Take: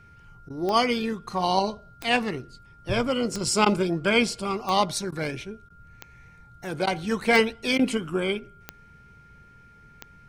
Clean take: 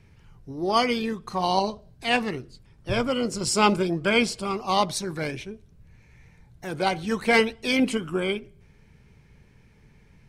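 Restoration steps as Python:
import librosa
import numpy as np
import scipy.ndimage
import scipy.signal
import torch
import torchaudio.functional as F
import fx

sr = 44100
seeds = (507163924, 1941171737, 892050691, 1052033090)

y = fx.fix_declick_ar(x, sr, threshold=10.0)
y = fx.notch(y, sr, hz=1400.0, q=30.0)
y = fx.fix_interpolate(y, sr, at_s=(0.49, 3.65, 5.11, 5.69, 6.86, 7.78), length_ms=10.0)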